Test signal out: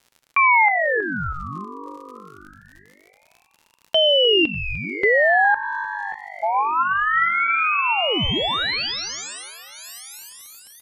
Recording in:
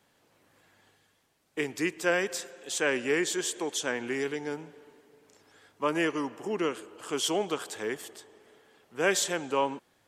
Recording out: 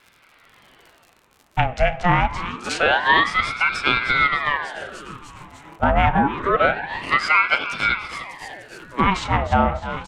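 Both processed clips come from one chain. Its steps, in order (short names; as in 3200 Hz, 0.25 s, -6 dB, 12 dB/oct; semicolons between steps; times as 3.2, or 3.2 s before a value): Wiener smoothing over 9 samples; on a send: frequency-shifting echo 0.299 s, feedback 65%, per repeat +49 Hz, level -15 dB; on the sum: crackle 100/s -51 dBFS; treble ducked by the level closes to 2000 Hz, closed at -29 dBFS; FDN reverb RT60 0.48 s, high-frequency decay 0.85×, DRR 14 dB; maximiser +18.5 dB; ring modulator with a swept carrier 1100 Hz, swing 70%, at 0.26 Hz; gain -3 dB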